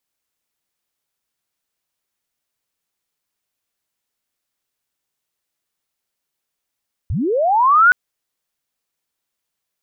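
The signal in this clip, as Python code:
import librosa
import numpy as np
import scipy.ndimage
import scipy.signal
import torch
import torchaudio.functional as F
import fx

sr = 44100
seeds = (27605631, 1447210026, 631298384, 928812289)

y = fx.chirp(sr, length_s=0.82, from_hz=60.0, to_hz=1500.0, law='linear', from_db=-18.0, to_db=-6.5)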